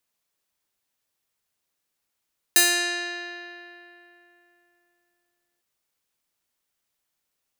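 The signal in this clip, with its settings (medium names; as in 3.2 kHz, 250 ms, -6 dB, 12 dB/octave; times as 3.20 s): plucked string F4, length 3.05 s, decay 3.19 s, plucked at 0.31, bright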